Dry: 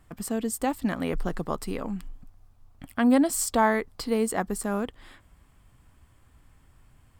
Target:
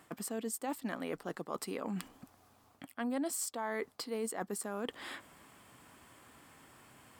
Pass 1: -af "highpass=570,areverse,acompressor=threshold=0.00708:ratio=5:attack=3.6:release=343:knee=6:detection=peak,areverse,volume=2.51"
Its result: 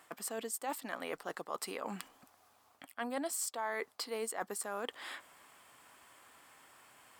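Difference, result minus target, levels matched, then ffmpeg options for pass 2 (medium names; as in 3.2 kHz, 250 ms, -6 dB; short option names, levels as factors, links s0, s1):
250 Hz band -6.5 dB
-af "highpass=260,areverse,acompressor=threshold=0.00708:ratio=5:attack=3.6:release=343:knee=6:detection=peak,areverse,volume=2.51"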